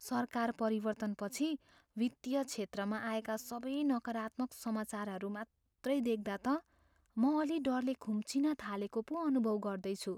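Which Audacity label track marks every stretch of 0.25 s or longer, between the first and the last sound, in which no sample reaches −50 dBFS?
1.560000	1.970000	silence
5.440000	5.840000	silence
6.600000	7.170000	silence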